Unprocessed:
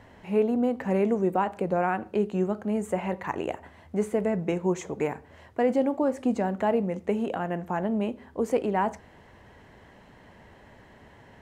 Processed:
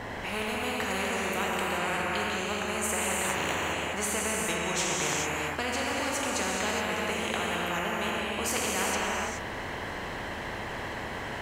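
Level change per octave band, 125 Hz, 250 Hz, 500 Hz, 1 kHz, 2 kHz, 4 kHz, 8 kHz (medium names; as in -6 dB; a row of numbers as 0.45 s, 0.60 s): -4.0 dB, -8.0 dB, -6.0 dB, 0.0 dB, +10.0 dB, +17.5 dB, +18.5 dB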